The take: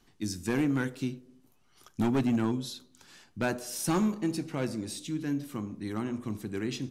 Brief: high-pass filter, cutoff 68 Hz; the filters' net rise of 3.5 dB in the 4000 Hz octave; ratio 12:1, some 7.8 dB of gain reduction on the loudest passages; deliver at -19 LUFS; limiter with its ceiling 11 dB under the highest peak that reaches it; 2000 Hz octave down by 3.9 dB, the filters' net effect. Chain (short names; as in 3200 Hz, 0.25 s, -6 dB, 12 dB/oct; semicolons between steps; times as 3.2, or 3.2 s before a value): HPF 68 Hz; bell 2000 Hz -7 dB; bell 4000 Hz +6 dB; compressor 12:1, threshold -31 dBFS; gain +22 dB; limiter -10 dBFS